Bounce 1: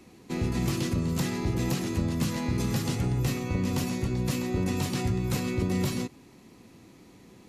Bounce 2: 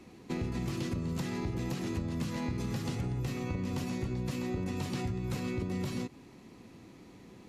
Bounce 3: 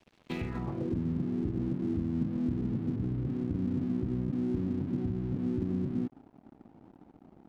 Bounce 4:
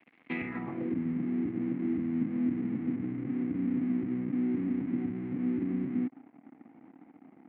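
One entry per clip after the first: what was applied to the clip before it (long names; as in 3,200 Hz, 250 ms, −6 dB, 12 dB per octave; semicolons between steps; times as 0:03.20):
high-shelf EQ 6,700 Hz −8.5 dB; downward compressor, threshold −31 dBFS, peak gain reduction 8.5 dB
low-pass filter sweep 3,300 Hz → 290 Hz, 0:00.35–0:00.98; dead-zone distortion −49.5 dBFS
loudspeaker in its box 270–2,500 Hz, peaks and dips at 270 Hz +5 dB, 400 Hz −8 dB, 580 Hz −8 dB, 940 Hz −5 dB, 1,400 Hz −3 dB, 2,100 Hz +9 dB; level +4 dB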